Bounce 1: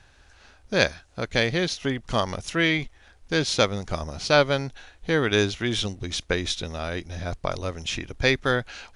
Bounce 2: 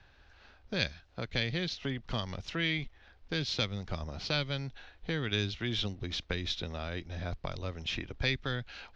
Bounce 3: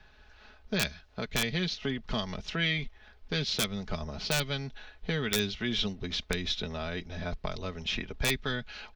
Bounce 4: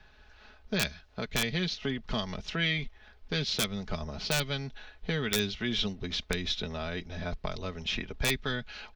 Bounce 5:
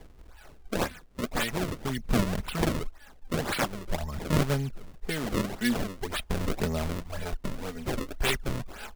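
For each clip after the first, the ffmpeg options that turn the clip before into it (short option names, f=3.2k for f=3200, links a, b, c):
-filter_complex "[0:a]lowpass=f=4.7k:w=0.5412,lowpass=f=4.7k:w=1.3066,acrossover=split=210|2300[a][b][c];[b]acompressor=threshold=-32dB:ratio=6[d];[a][d][c]amix=inputs=3:normalize=0,volume=-5dB"
-af "aecho=1:1:4.7:0.56,aeval=exprs='(mod(7.94*val(0)+1,2)-1)/7.94':c=same,volume=2dB"
-af anull
-af "aphaser=in_gain=1:out_gain=1:delay=4.2:decay=0.63:speed=0.45:type=sinusoidal,acrusher=samples=32:mix=1:aa=0.000001:lfo=1:lforange=51.2:lforate=1.9"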